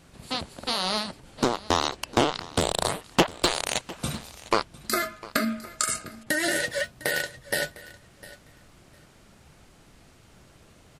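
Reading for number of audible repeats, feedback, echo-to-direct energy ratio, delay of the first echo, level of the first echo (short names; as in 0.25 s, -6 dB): 2, 18%, -19.0 dB, 0.704 s, -19.0 dB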